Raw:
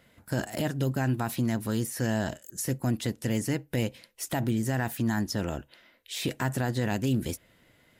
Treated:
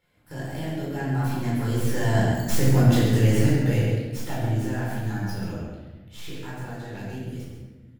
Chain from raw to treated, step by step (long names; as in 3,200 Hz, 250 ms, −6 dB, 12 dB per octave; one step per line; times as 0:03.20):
stylus tracing distortion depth 0.099 ms
source passing by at 0:02.74, 14 m/s, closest 7.4 metres
slap from a distant wall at 23 metres, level −7 dB
rectangular room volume 750 cubic metres, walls mixed, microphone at 4.3 metres